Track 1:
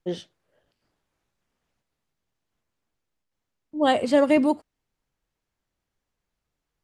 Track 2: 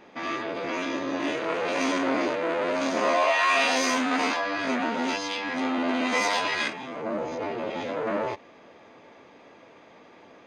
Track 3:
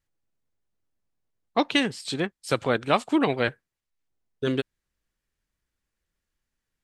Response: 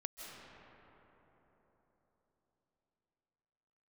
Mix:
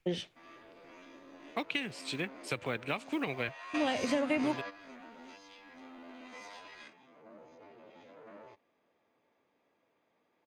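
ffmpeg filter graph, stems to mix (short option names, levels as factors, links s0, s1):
-filter_complex "[0:a]volume=1.19,asplit=2[s0][s1];[1:a]adelay=200,volume=0.299[s2];[2:a]acrusher=bits=8:mode=log:mix=0:aa=0.000001,volume=0.376[s3];[s1]apad=whole_len=470242[s4];[s2][s4]sidechaingate=range=0.2:threshold=0.01:ratio=16:detection=peak[s5];[s0][s3]amix=inputs=2:normalize=0,equalizer=f=2400:w=2.5:g=12,acompressor=threshold=0.0447:ratio=2,volume=1[s6];[s5][s6]amix=inputs=2:normalize=0,acrossover=split=190[s7][s8];[s8]acompressor=threshold=0.02:ratio=2[s9];[s7][s9]amix=inputs=2:normalize=0"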